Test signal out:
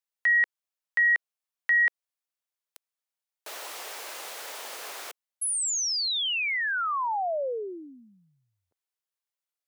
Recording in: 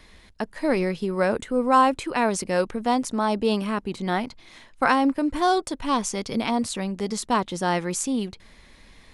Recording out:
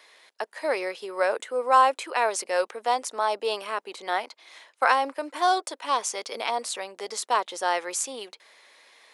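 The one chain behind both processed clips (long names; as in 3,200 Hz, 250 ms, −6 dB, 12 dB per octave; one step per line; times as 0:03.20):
high-pass filter 470 Hz 24 dB per octave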